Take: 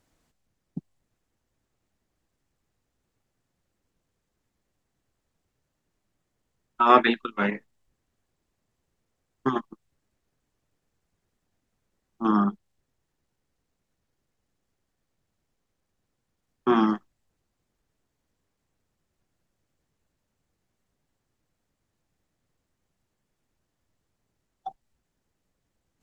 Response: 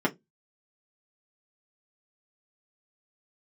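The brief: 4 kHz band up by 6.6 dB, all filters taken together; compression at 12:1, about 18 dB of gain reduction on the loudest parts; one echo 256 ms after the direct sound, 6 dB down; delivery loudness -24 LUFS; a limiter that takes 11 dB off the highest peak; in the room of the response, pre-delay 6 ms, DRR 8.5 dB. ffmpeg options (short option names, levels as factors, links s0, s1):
-filter_complex "[0:a]equalizer=f=4000:t=o:g=8,acompressor=threshold=0.0398:ratio=12,alimiter=level_in=1.5:limit=0.0631:level=0:latency=1,volume=0.668,aecho=1:1:256:0.501,asplit=2[s0][s1];[1:a]atrim=start_sample=2205,adelay=6[s2];[s1][s2]afir=irnorm=-1:irlink=0,volume=0.1[s3];[s0][s3]amix=inputs=2:normalize=0,volume=5.01"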